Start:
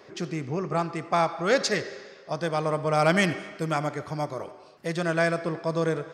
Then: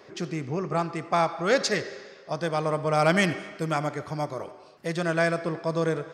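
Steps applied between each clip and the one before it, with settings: nothing audible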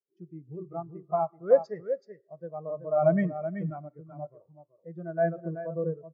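dynamic EQ 3300 Hz, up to -4 dB, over -40 dBFS, Q 0.98; echo 0.38 s -4 dB; spectral expander 2.5:1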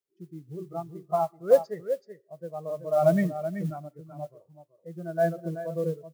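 modulation noise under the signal 29 dB; gain +1.5 dB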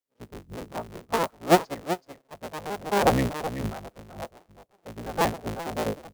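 cycle switcher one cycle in 3, inverted

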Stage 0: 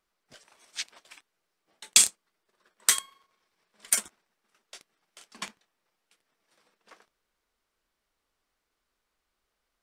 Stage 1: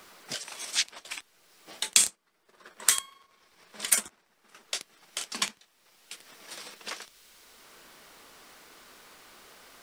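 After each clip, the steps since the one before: in parallel at -0.5 dB: limiter -11 dBFS, peak gain reduction 8 dB; on the sum: three-band squash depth 70%; gain +2 dB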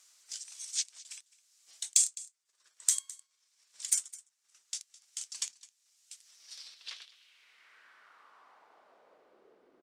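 band-pass sweep 7000 Hz -> 350 Hz, 6.2–9.69; echo 0.21 s -20 dB; soft clip -8 dBFS, distortion -20 dB

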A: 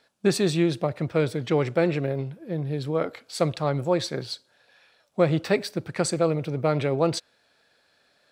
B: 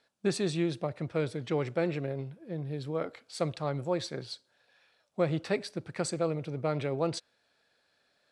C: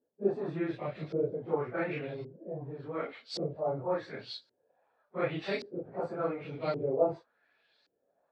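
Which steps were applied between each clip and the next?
steep low-pass 11000 Hz 36 dB/oct; gain -7.5 dB
phase scrambler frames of 0.1 s; LFO low-pass saw up 0.89 Hz 340–4900 Hz; tone controls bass -6 dB, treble +2 dB; gain -2.5 dB

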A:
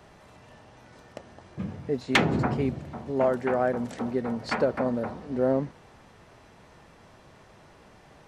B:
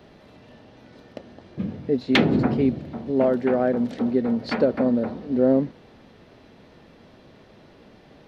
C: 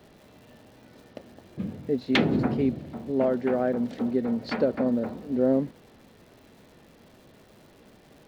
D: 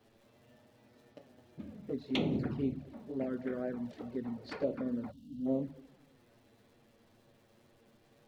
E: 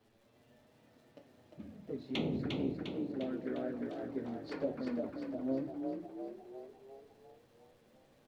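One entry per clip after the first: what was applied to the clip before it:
graphic EQ 250/500/1000/4000/8000 Hz +8/+4/-4/+7/-12 dB
crackle 360/s -45 dBFS; gain -4 dB
shoebox room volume 97 m³, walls mixed, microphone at 0.31 m; envelope flanger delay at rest 9.6 ms, full sweep at -18.5 dBFS; spectral gain 5.12–5.46, 290–2700 Hz -25 dB; gain -9 dB
flange 0.69 Hz, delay 9.3 ms, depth 4.1 ms, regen -66%; on a send: frequency-shifting echo 0.352 s, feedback 55%, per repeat +36 Hz, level -4 dB; on the sum: gain +1 dB

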